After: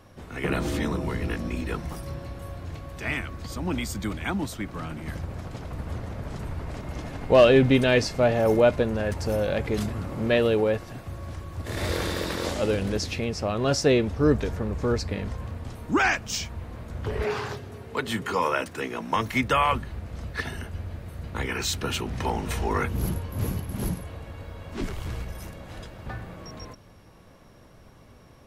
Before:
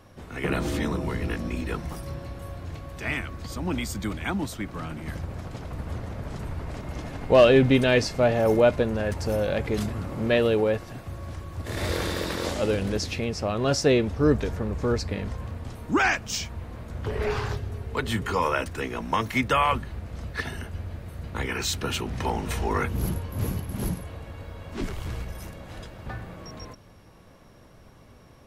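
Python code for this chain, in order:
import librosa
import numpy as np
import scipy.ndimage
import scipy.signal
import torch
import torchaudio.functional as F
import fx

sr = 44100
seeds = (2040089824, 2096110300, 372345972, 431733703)

y = fx.highpass(x, sr, hz=150.0, slope=12, at=(17.24, 19.16))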